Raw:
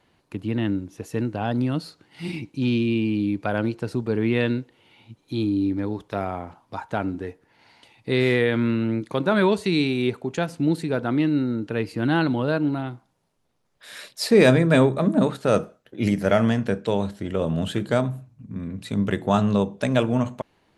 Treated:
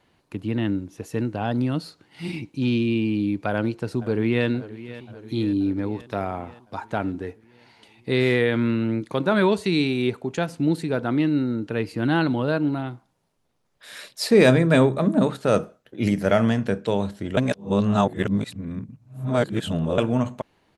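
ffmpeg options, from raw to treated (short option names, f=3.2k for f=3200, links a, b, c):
-filter_complex "[0:a]asplit=2[a][b];[b]afade=t=in:st=3.48:d=0.01,afade=t=out:st=4.47:d=0.01,aecho=0:1:530|1060|1590|2120|2650|3180|3710:0.158489|0.103018|0.0669617|0.0435251|0.0282913|0.0183894|0.0119531[c];[a][c]amix=inputs=2:normalize=0,asplit=3[d][e][f];[d]atrim=end=17.372[g];[e]atrim=start=17.368:end=19.982,asetpts=PTS-STARTPTS,areverse[h];[f]atrim=start=19.978[i];[g][h]acrossfade=d=0.004:c1=hsin:c2=hsin[j];[j][i]acrossfade=d=0.004:c1=hsin:c2=hsin"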